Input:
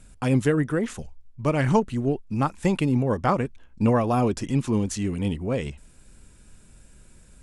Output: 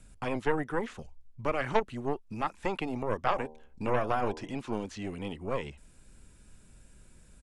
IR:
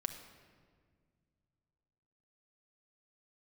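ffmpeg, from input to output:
-filter_complex "[0:a]acrossover=split=4500[a][b];[b]acompressor=threshold=-57dB:ratio=4:attack=1:release=60[c];[a][c]amix=inputs=2:normalize=0,aresample=32000,aresample=44100,acrossover=split=340|900|2400[d][e][f][g];[d]acompressor=threshold=-36dB:ratio=6[h];[e]aeval=exprs='0.224*(cos(1*acos(clip(val(0)/0.224,-1,1)))-cos(1*PI/2))+0.0631*(cos(6*acos(clip(val(0)/0.224,-1,1)))-cos(6*PI/2))':c=same[i];[h][i][f][g]amix=inputs=4:normalize=0,asettb=1/sr,asplit=3[j][k][l];[j]atrim=end=3.194[m];[k]atrim=start=3.19:end=4.58,asetpts=PTS-STARTPTS,afade=t=in:d=0.004:c=qsin,afade=t=out:st=1.386:d=0.004:c=qsin,bandreject=f=77.46:t=h:w=4,bandreject=f=154.92:t=h:w=4,bandreject=f=232.38:t=h:w=4,bandreject=f=309.84:t=h:w=4,bandreject=f=387.3:t=h:w=4,bandreject=f=464.76:t=h:w=4,bandreject=f=542.22:t=h:w=4,bandreject=f=619.68:t=h:w=4,bandreject=f=697.14:t=h:w=4,bandreject=f=774.6:t=h:w=4,bandreject=f=852.06:t=h:w=4,bandreject=f=929.52:t=h:w=4,bandreject=f=1.00698k:t=h:w=4[n];[l]atrim=start=4.576[o];[m][n]acrossfade=d=0.004:c1=hsin:c2=qsin[p];[p][o]acrossfade=d=0.004:c1=qsin:c2=hsin,volume=-4.5dB"

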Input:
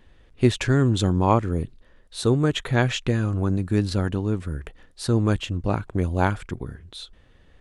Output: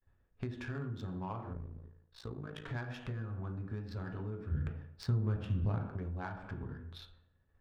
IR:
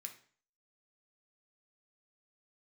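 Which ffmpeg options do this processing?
-filter_complex "[0:a]agate=range=-33dB:threshold=-44dB:ratio=3:detection=peak[a];[1:a]atrim=start_sample=2205,asetrate=30429,aresample=44100[b];[a][b]afir=irnorm=-1:irlink=0,acompressor=threshold=-34dB:ratio=16,asettb=1/sr,asplit=3[c][d][e];[c]atrim=end=1.534[f];[d]atrim=start=1.53:end=2.66,asetpts=PTS-STARTPTS,afade=t=in:d=0.004:c=qsin,afade=t=out:st=1.126:d=0.004:c=qsin,tremolo=f=55:d=0.788[g];[e]atrim=start=2.656[h];[f][g]acrossfade=d=0.004:c1=hsin:c2=qsin[i];[i][h]acrossfade=d=0.004:c1=qsin:c2=hsin,asettb=1/sr,asplit=3[j][k][l];[j]atrim=end=4.514[m];[k]atrim=start=4.51:end=5.89,asetpts=PTS-STARTPTS,afade=t=in:d=0.004:c=qsin,afade=t=out:st=1.376:d=0.004:c=qsin,equalizer=f=120:t=o:w=2.7:g=9[n];[l]atrim=start=5.886[o];[m][n]acrossfade=d=0.004:c1=hsin:c2=qsin[p];[p][o]acrossfade=d=0.004:c1=qsin:c2=hsin,adynamicsmooth=sensitivity=5:basefreq=1.6k,volume=-2dB"

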